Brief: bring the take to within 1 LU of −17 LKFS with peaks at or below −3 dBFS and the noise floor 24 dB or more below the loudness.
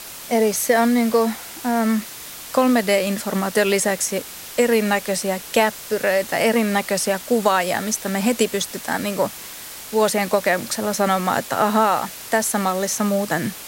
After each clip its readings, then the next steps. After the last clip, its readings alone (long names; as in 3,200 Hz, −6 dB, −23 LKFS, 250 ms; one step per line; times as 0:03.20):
background noise floor −36 dBFS; target noise floor −45 dBFS; integrated loudness −20.5 LKFS; sample peak −4.0 dBFS; target loudness −17.0 LKFS
→ broadband denoise 9 dB, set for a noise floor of −36 dBFS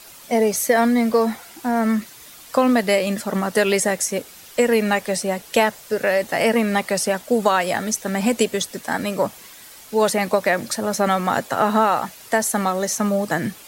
background noise floor −43 dBFS; target noise floor −45 dBFS
→ broadband denoise 6 dB, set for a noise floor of −43 dBFS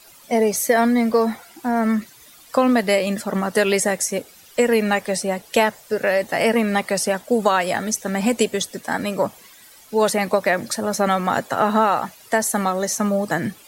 background noise floor −48 dBFS; integrated loudness −20.5 LKFS; sample peak −4.5 dBFS; target loudness −17.0 LKFS
→ level +3.5 dB
brickwall limiter −3 dBFS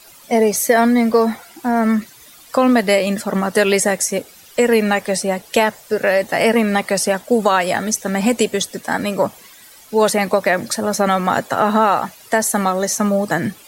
integrated loudness −17.5 LKFS; sample peak −3.0 dBFS; background noise floor −44 dBFS